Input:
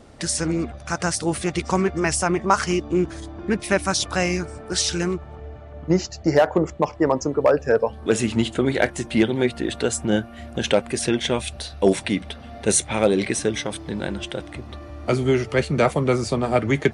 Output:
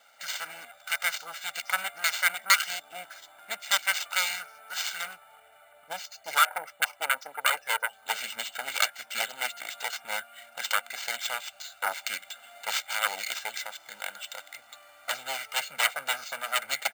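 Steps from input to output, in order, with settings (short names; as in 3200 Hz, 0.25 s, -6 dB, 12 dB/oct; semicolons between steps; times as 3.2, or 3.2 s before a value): self-modulated delay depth 0.78 ms; Butterworth band-pass 3100 Hz, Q 0.53; comb 1.4 ms, depth 90%; careless resampling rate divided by 4×, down filtered, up hold; gain -3 dB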